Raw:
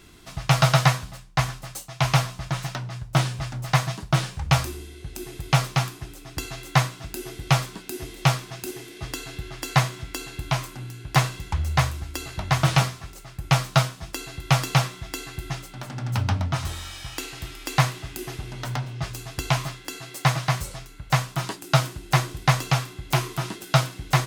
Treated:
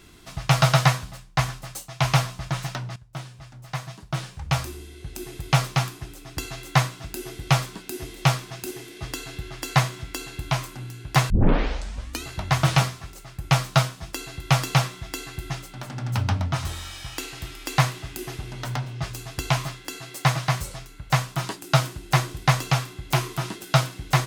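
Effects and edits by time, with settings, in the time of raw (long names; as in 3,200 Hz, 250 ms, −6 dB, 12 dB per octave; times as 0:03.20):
0:02.96–0:05.08: fade in quadratic, from −15 dB
0:11.30: tape start 0.95 s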